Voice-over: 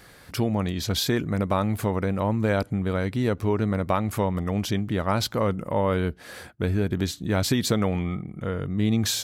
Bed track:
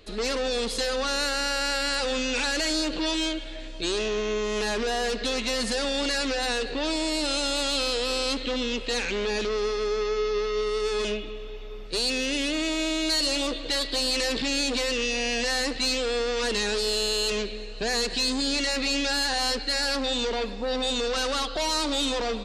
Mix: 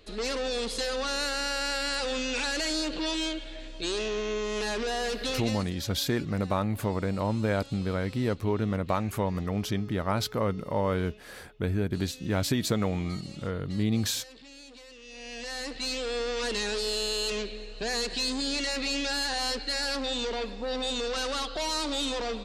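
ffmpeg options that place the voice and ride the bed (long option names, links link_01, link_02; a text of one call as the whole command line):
ffmpeg -i stem1.wav -i stem2.wav -filter_complex "[0:a]adelay=5000,volume=-4dB[link_01];[1:a]volume=15.5dB,afade=type=out:start_time=5.31:duration=0.39:silence=0.105925,afade=type=in:start_time=15.02:duration=1.22:silence=0.112202[link_02];[link_01][link_02]amix=inputs=2:normalize=0" out.wav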